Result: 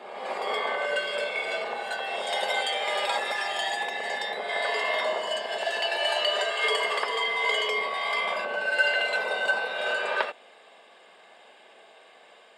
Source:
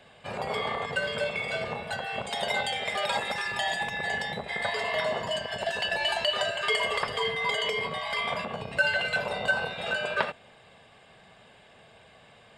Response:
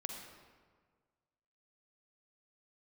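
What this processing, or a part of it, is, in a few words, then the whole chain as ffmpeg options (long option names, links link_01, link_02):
ghost voice: -filter_complex "[0:a]areverse[link_01];[1:a]atrim=start_sample=2205[link_02];[link_01][link_02]afir=irnorm=-1:irlink=0,areverse,highpass=frequency=310:width=0.5412,highpass=frequency=310:width=1.3066,volume=3dB"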